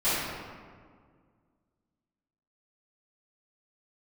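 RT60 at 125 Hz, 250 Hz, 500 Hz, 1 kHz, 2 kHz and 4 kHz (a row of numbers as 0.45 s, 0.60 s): 2.4 s, 2.4 s, 1.9 s, 1.8 s, 1.4 s, 1.0 s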